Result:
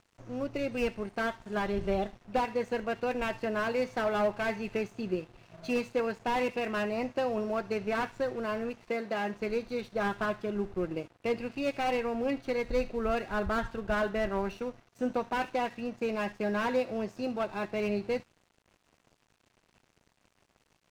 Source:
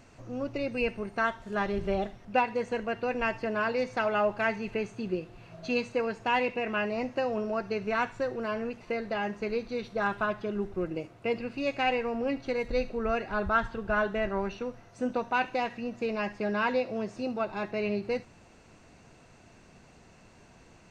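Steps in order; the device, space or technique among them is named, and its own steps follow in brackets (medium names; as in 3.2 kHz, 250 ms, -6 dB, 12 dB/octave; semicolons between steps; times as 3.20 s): early transistor amplifier (crossover distortion -52 dBFS; slew-rate limiter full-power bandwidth 46 Hz); 8.89–9.34 s: high-pass 150 Hz 24 dB/octave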